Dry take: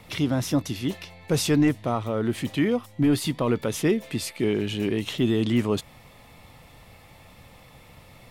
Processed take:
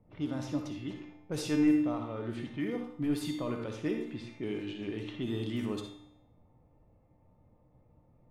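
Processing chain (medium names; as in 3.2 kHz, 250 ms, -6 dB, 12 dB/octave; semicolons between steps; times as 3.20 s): level-controlled noise filter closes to 470 Hz, open at -18.5 dBFS; feedback comb 300 Hz, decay 0.71 s, mix 80%; reverberation RT60 0.50 s, pre-delay 47 ms, DRR 4.5 dB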